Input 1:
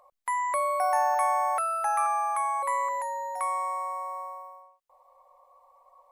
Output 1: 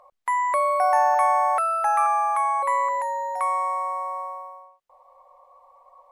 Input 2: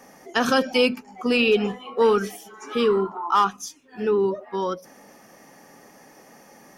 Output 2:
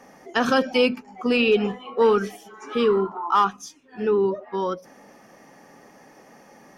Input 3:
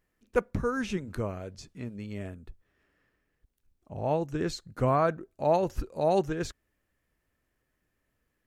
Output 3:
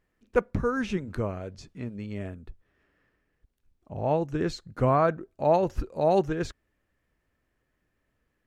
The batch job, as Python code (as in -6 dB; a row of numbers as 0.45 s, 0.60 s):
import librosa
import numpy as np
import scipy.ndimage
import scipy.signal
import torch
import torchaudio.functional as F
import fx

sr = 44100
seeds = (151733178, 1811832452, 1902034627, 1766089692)

y = fx.lowpass(x, sr, hz=3900.0, slope=6)
y = librosa.util.normalize(y) * 10.0 ** (-9 / 20.0)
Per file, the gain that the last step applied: +5.5 dB, +0.5 dB, +2.5 dB